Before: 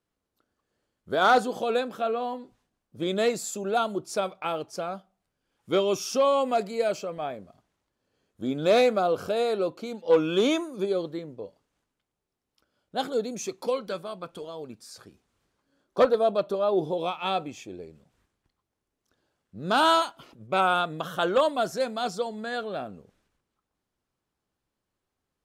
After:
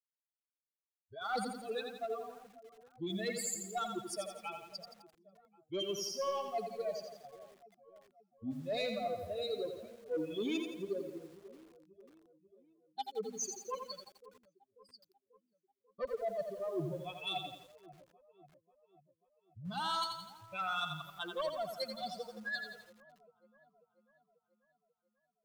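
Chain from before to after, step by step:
spectral dynamics exaggerated over time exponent 3
dynamic equaliser 4,400 Hz, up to +8 dB, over −58 dBFS, Q 2.3
downward expander −53 dBFS
reversed playback
downward compressor 6 to 1, threshold −41 dBFS, peak gain reduction 21.5 dB
reversed playback
soft clipping −34.5 dBFS, distortion −21 dB
on a send: delay with a low-pass on its return 540 ms, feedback 55%, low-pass 1,000 Hz, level −17 dB
on the sum: feedback echo at a low word length 85 ms, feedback 55%, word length 11 bits, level −6 dB
level +6.5 dB

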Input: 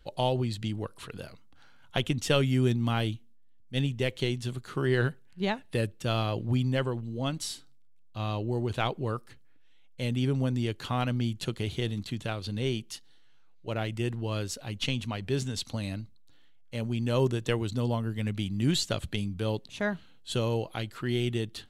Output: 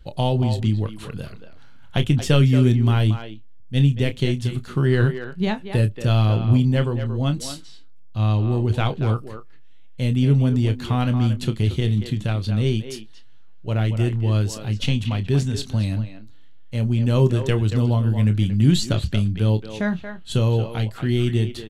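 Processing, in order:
bass and treble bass +10 dB, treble 0 dB
double-tracking delay 28 ms −10.5 dB
far-end echo of a speakerphone 230 ms, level −8 dB
level +3 dB

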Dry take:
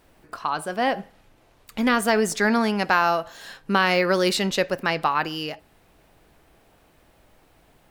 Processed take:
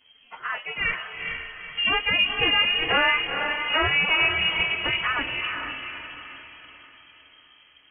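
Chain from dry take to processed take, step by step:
phase-vocoder pitch shift without resampling +9 semitones
low-shelf EQ 92 Hz +9 dB
feedback delay with all-pass diffusion 456 ms, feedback 44%, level −5 dB
voice inversion scrambler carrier 3,200 Hz

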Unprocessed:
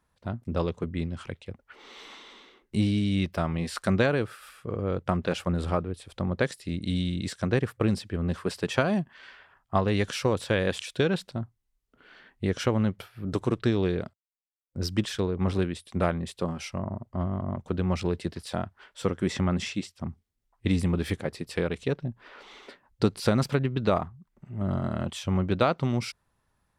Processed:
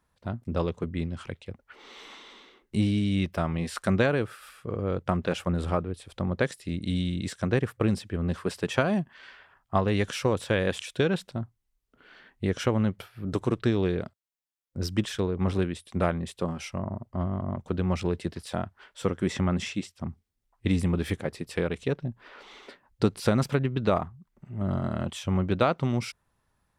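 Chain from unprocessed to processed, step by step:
dynamic equaliser 4,500 Hz, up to −4 dB, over −53 dBFS, Q 3.2

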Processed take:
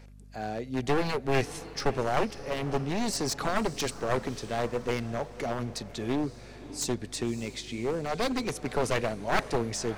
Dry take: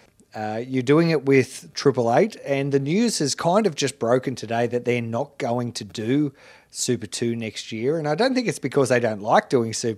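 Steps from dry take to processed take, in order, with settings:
wavefolder on the positive side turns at −19 dBFS
feedback delay with all-pass diffusion 580 ms, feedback 44%, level −15 dB
mains hum 50 Hz, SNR 20 dB
level −6.5 dB

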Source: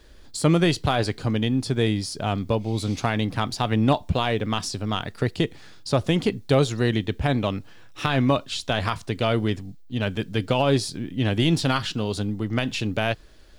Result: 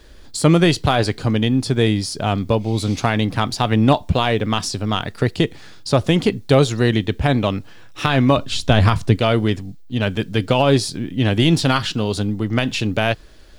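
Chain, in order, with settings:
0:08.37–0:09.16: low-shelf EQ 300 Hz +11 dB
level +5.5 dB

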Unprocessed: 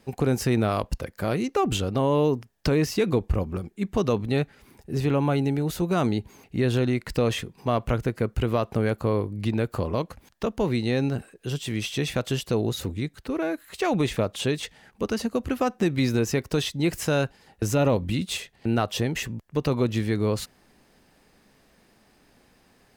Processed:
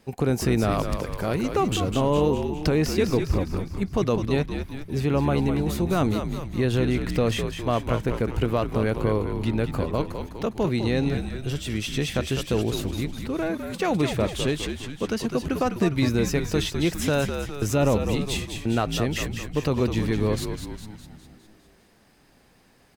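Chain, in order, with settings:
0:00.81–0:01.90: surface crackle 300 per second −44 dBFS
echo with shifted repeats 204 ms, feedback 56%, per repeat −71 Hz, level −7 dB

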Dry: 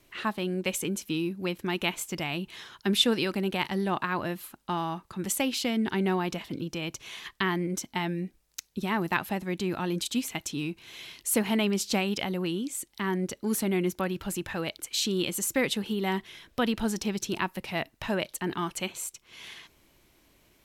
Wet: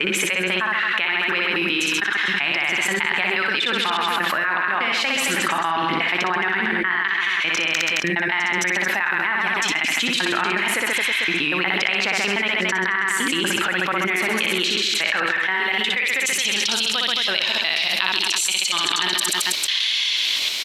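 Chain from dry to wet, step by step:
slices reordered back to front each 120 ms, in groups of 8
band-pass filter sweep 1,800 Hz → 4,000 Hz, 0:15.50–0:16.90
on a send: reverse bouncing-ball delay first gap 60 ms, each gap 1.2×, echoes 5
on the sum: envelope flattener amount 100%
level +6 dB

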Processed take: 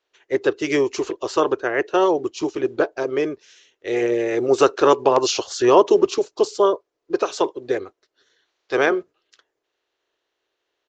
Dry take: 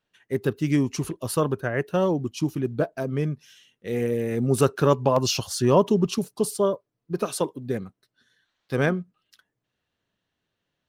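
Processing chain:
ceiling on every frequency bin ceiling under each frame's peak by 12 dB
downsampling to 16,000 Hz
low shelf with overshoot 270 Hz −11 dB, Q 3
level +2.5 dB

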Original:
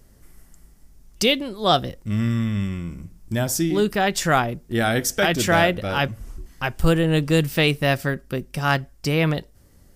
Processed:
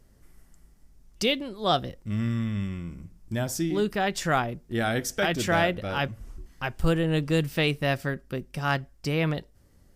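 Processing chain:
high-shelf EQ 7,400 Hz −6 dB
level −5.5 dB

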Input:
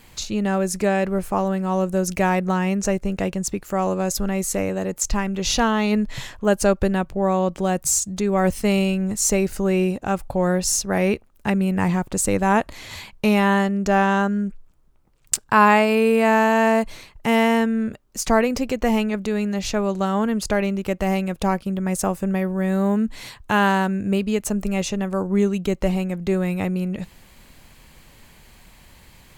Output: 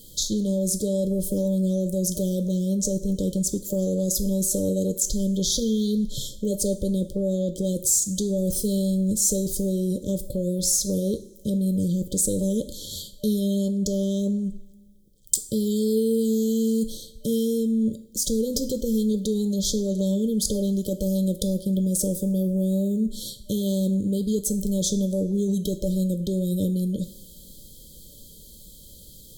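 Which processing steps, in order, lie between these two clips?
high-shelf EQ 6,600 Hz +11 dB
brick-wall band-stop 600–3,100 Hz
in parallel at −1 dB: compressor whose output falls as the input rises −24 dBFS, ratio −0.5
on the sum: coupled-rooms reverb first 0.42 s, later 1.5 s, from −15 dB, DRR 8 dB
level −7.5 dB

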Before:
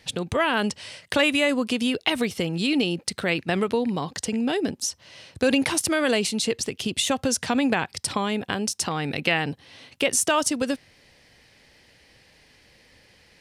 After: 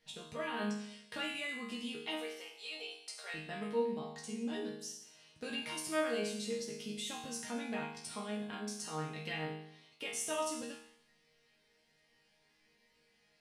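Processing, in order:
0:02.15–0:03.34: inverse Chebyshev high-pass filter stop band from 160 Hz, stop band 60 dB
resonators tuned to a chord D#3 sus4, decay 0.74 s
level +4 dB

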